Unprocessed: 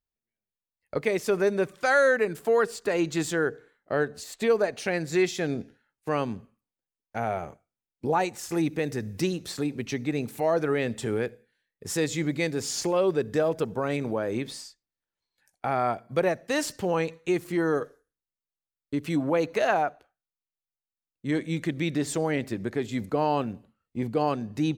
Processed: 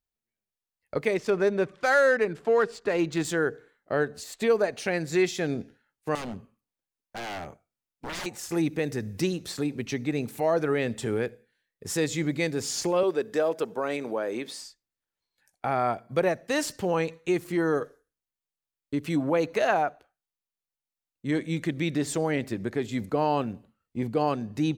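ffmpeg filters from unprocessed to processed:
-filter_complex "[0:a]asettb=1/sr,asplit=3[a][b][c];[a]atrim=end=1.144[d];[b]atrim=start=1.14:end=3.25,asetpts=PTS-STARTPTS,afade=t=in:d=0.004:c=qsin,afade=t=out:st=2.106:d=0.004:c=qsin,adynamicsmooth=sensitivity=6:basefreq=3.9k[e];[c]atrim=start=3.246[f];[d][e]acrossfade=d=0.004:c1=hsin:c2=qsin[g];[g][f]acrossfade=d=0.004:c1=qsin:c2=hsin,asettb=1/sr,asplit=3[h][i][j];[h]atrim=end=6.154[k];[i]atrim=start=6.15:end=8.26,asetpts=PTS-STARTPTS,afade=t=in:d=0.004:c=qsin,afade=t=out:st=2.106:d=0.004:c=qsin,aeval=exprs='0.0316*(abs(mod(val(0)/0.0316+3,4)-2)-1)':c=same[l];[j]atrim=start=8.256[m];[k][l]acrossfade=d=0.004:c1=hsin:c2=qsin[n];[n][m]acrossfade=d=0.004:c1=qsin:c2=hsin,asettb=1/sr,asplit=3[o][p][q];[o]atrim=end=13.034[r];[p]atrim=start=13.03:end=14.62,asetpts=PTS-STARTPTS,afade=t=in:d=0.004:c=qsin,afade=t=out:st=1.586:d=0.004:c=qsin,highpass=300[s];[q]atrim=start=14.616[t];[r][s]acrossfade=d=0.004:c1=hsin:c2=qsin[u];[u][t]acrossfade=d=0.004:c1=qsin:c2=hsin"

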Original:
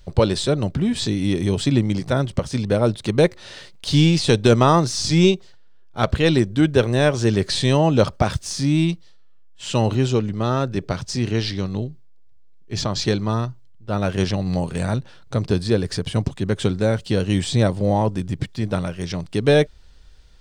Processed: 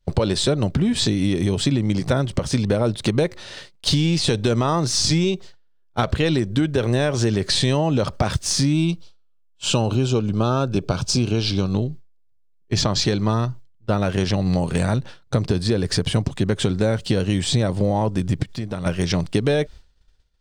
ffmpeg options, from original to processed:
-filter_complex "[0:a]asettb=1/sr,asplit=3[a][b][c];[a]atrim=end=8.734[d];[b]atrim=start=8.73:end=11.75,asetpts=PTS-STARTPTS,afade=t=in:d=0.004:c=qsin,afade=t=out:st=3.016:d=0.004:c=qsin,asuperstop=centerf=1900:order=4:qfactor=3.3[e];[c]atrim=start=11.746[f];[d][e]acrossfade=d=0.004:c1=hsin:c2=qsin[g];[g][f]acrossfade=d=0.004:c1=qsin:c2=hsin,asplit=3[h][i][j];[h]afade=t=out:st=18.42:d=0.02[k];[i]acompressor=threshold=-30dB:ratio=12:attack=3.2:release=140:knee=1:detection=peak,afade=t=in:st=18.42:d=0.02,afade=t=out:st=18.85:d=0.02[l];[j]afade=t=in:st=18.85:d=0.02[m];[k][l][m]amix=inputs=3:normalize=0,alimiter=limit=-10dB:level=0:latency=1:release=46,agate=range=-33dB:threshold=-32dB:ratio=3:detection=peak,acompressor=threshold=-25dB:ratio=6,volume=8.5dB"

